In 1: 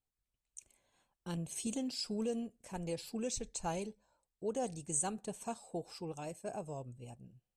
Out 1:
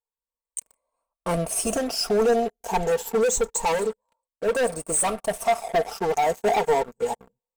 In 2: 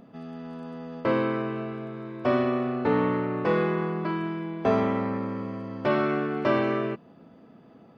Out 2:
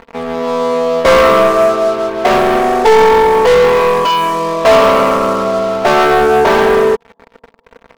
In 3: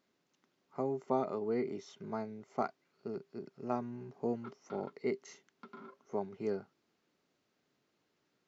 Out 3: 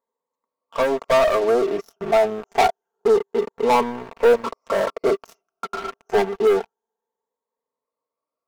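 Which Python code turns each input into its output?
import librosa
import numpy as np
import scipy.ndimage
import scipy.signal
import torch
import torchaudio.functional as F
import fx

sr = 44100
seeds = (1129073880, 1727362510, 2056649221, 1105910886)

y = fx.spec_ripple(x, sr, per_octave=1.0, drift_hz=0.27, depth_db=13)
y = fx.graphic_eq_10(y, sr, hz=(125, 250, 500, 1000, 2000, 4000), db=(-12, -10, 7, 10, -10, -12))
y = fx.leveller(y, sr, passes=5)
y = fx.rider(y, sr, range_db=3, speed_s=2.0)
y = y + 0.51 * np.pad(y, (int(4.4 * sr / 1000.0), 0))[:len(y)]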